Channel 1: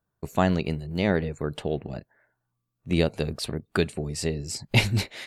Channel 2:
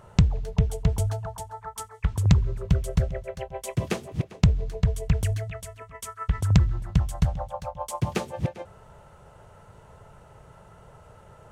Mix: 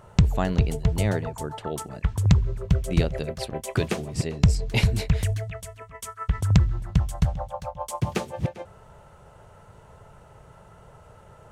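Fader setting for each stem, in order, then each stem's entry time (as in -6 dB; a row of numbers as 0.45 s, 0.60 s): -4.0 dB, +0.5 dB; 0.00 s, 0.00 s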